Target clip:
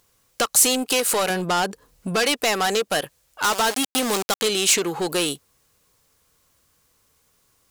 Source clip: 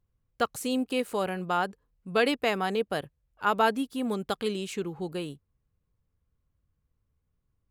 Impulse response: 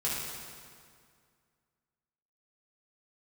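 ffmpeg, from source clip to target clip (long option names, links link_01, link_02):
-filter_complex "[0:a]asettb=1/sr,asplit=3[link_01][link_02][link_03];[link_01]atrim=end=1.304[link_04];[link_02]atrim=start=1.3:end=2.16,asetpts=PTS-STARTPTS,afade=type=in:duration=0.004:curve=qsin,afade=type=out:start_time=0.856:duration=0.004:curve=qsin,lowshelf=frequency=410:gain=11.5[link_05];[link_03]atrim=start=2.156[link_06];[link_04][link_05]acrossfade=duration=0.004:curve1=hsin:curve2=qsin[link_07];[link_07][link_06]acrossfade=duration=0.004:curve1=qsin:curve2=hsin,asettb=1/sr,asplit=3[link_08][link_09][link_10];[link_08]atrim=end=3.444[link_11];[link_09]atrim=start=3.44:end=4.42,asetpts=PTS-STARTPTS,afade=type=in:duration=0.004:curve=qsin,afade=type=out:start_time=0.976:duration=0.004:curve=qsin,aeval=exprs='val(0)*gte(abs(val(0)),0.02)':channel_layout=same[link_12];[link_10]atrim=start=4.416[link_13];[link_11][link_12]acrossfade=duration=0.004:curve1=hsin:curve2=qsin[link_14];[link_14][link_13]acrossfade=duration=0.004:curve1=qsin:curve2=hsin,acompressor=threshold=-32dB:ratio=4,asplit=2[link_15][link_16];[link_16]highpass=frequency=720:poles=1,volume=20dB,asoftclip=type=tanh:threshold=-22.5dB[link_17];[link_15][link_17]amix=inputs=2:normalize=0,lowpass=frequency=6100:poles=1,volume=-6dB,bass=frequency=250:gain=-5,treble=frequency=4000:gain=13,volume=8.5dB"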